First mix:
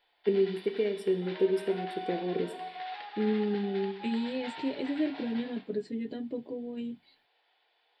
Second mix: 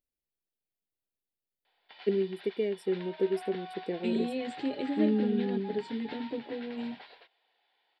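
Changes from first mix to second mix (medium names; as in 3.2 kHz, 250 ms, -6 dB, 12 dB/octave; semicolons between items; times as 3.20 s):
first voice: entry +1.80 s; background: entry +1.65 s; reverb: off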